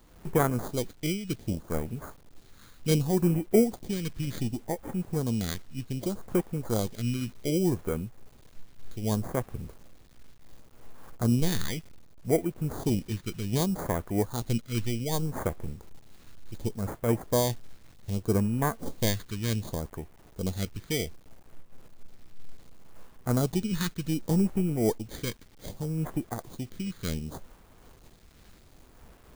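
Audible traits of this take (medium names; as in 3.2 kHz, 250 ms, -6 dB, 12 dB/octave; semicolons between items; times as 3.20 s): aliases and images of a low sample rate 2.7 kHz, jitter 0%; phasing stages 2, 0.66 Hz, lowest notch 690–4000 Hz; a quantiser's noise floor 10-bit, dither none; random flutter of the level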